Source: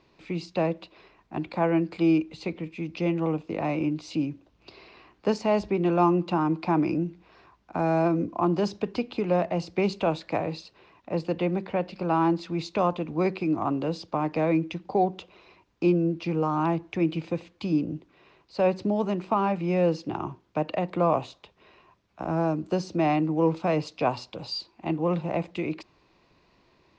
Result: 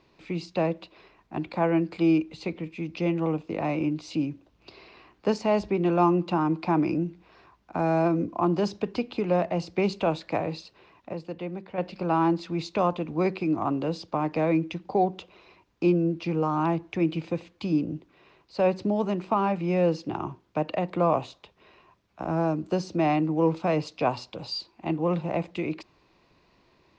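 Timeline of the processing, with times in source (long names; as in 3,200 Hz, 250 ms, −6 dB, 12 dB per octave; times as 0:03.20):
0:11.13–0:11.78: clip gain −8 dB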